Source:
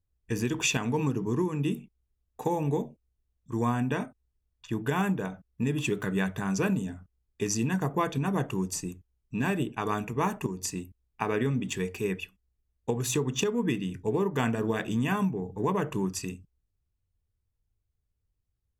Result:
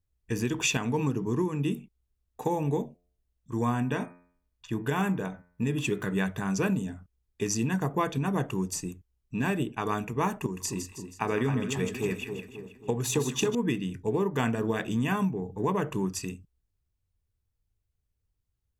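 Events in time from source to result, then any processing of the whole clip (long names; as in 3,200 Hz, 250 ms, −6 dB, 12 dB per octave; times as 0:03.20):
0:02.85–0:06.14: hum removal 88.23 Hz, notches 28
0:10.40–0:13.55: echo with a time of its own for lows and highs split 1,100 Hz, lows 269 ms, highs 160 ms, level −7.5 dB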